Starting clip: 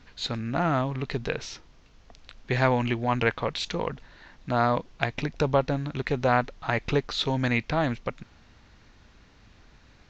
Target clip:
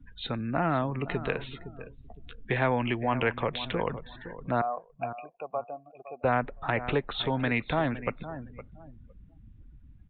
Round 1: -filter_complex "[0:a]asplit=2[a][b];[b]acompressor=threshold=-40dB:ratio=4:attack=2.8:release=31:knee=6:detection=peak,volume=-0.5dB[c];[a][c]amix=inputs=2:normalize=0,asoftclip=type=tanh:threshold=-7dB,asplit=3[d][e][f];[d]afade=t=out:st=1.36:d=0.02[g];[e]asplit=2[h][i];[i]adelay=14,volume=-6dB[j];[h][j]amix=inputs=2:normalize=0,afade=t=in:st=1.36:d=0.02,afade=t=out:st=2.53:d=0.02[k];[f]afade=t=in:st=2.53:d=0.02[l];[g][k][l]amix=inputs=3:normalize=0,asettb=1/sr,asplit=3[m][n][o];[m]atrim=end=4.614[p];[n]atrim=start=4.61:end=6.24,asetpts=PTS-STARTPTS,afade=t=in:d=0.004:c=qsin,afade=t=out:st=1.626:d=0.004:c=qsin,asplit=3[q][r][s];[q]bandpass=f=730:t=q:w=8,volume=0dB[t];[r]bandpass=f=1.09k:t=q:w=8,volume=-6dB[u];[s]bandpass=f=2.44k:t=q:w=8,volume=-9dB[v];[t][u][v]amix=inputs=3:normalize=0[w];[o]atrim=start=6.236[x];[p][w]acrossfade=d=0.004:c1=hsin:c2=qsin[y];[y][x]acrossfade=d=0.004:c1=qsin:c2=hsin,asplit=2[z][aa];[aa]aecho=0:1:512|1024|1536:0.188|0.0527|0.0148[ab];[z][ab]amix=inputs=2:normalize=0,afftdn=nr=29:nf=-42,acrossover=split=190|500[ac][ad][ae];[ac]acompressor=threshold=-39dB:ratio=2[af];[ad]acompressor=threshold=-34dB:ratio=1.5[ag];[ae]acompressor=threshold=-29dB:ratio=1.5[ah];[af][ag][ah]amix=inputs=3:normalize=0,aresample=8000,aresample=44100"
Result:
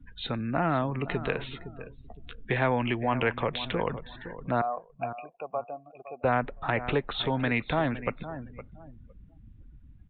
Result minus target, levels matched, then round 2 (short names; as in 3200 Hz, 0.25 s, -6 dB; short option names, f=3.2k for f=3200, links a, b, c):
compressor: peak gain reduction -7 dB
-filter_complex "[0:a]asplit=2[a][b];[b]acompressor=threshold=-49dB:ratio=4:attack=2.8:release=31:knee=6:detection=peak,volume=-0.5dB[c];[a][c]amix=inputs=2:normalize=0,asoftclip=type=tanh:threshold=-7dB,asplit=3[d][e][f];[d]afade=t=out:st=1.36:d=0.02[g];[e]asplit=2[h][i];[i]adelay=14,volume=-6dB[j];[h][j]amix=inputs=2:normalize=0,afade=t=in:st=1.36:d=0.02,afade=t=out:st=2.53:d=0.02[k];[f]afade=t=in:st=2.53:d=0.02[l];[g][k][l]amix=inputs=3:normalize=0,asettb=1/sr,asplit=3[m][n][o];[m]atrim=end=4.614[p];[n]atrim=start=4.61:end=6.24,asetpts=PTS-STARTPTS,afade=t=in:d=0.004:c=qsin,afade=t=out:st=1.626:d=0.004:c=qsin,asplit=3[q][r][s];[q]bandpass=f=730:t=q:w=8,volume=0dB[t];[r]bandpass=f=1.09k:t=q:w=8,volume=-6dB[u];[s]bandpass=f=2.44k:t=q:w=8,volume=-9dB[v];[t][u][v]amix=inputs=3:normalize=0[w];[o]atrim=start=6.236[x];[p][w]acrossfade=d=0.004:c1=hsin:c2=qsin[y];[y][x]acrossfade=d=0.004:c1=qsin:c2=hsin,asplit=2[z][aa];[aa]aecho=0:1:512|1024|1536:0.188|0.0527|0.0148[ab];[z][ab]amix=inputs=2:normalize=0,afftdn=nr=29:nf=-42,acrossover=split=190|500[ac][ad][ae];[ac]acompressor=threshold=-39dB:ratio=2[af];[ad]acompressor=threshold=-34dB:ratio=1.5[ag];[ae]acompressor=threshold=-29dB:ratio=1.5[ah];[af][ag][ah]amix=inputs=3:normalize=0,aresample=8000,aresample=44100"